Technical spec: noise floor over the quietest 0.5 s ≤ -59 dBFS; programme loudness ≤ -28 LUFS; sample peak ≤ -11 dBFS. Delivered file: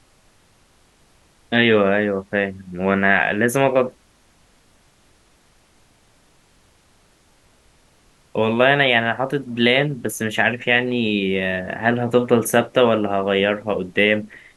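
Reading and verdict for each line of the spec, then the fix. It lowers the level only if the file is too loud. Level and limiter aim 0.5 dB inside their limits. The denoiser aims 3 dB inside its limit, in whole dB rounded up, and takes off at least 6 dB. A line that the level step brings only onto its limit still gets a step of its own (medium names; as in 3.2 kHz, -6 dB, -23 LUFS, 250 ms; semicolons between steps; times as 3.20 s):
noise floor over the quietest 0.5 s -57 dBFS: fail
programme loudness -18.5 LUFS: fail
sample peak -1.5 dBFS: fail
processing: trim -10 dB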